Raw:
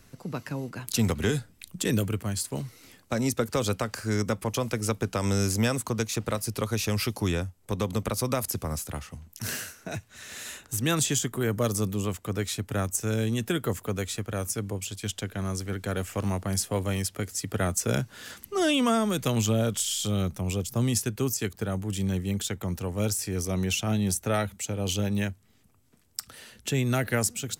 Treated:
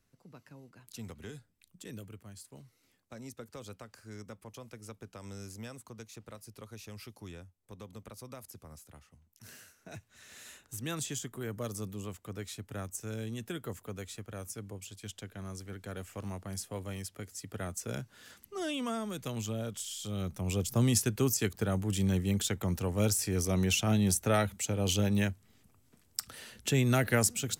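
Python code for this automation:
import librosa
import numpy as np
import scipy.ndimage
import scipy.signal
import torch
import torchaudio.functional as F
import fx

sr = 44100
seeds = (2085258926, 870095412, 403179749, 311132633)

y = fx.gain(x, sr, db=fx.line((9.54, -19.5), (9.96, -11.5), (20.01, -11.5), (20.66, -1.0)))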